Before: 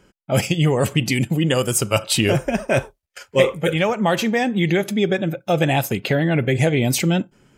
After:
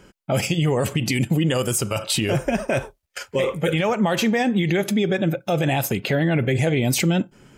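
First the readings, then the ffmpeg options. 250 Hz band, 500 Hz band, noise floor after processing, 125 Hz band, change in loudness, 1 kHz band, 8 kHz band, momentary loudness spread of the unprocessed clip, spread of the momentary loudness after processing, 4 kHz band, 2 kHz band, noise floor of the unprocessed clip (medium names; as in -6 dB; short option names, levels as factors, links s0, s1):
-1.0 dB, -3.0 dB, -64 dBFS, -1.5 dB, -2.0 dB, -2.5 dB, -2.0 dB, 4 LU, 5 LU, -2.5 dB, -2.5 dB, -68 dBFS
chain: -filter_complex "[0:a]asplit=2[s0][s1];[s1]acompressor=threshold=0.0355:ratio=6,volume=0.891[s2];[s0][s2]amix=inputs=2:normalize=0,alimiter=limit=0.251:level=0:latency=1:release=50"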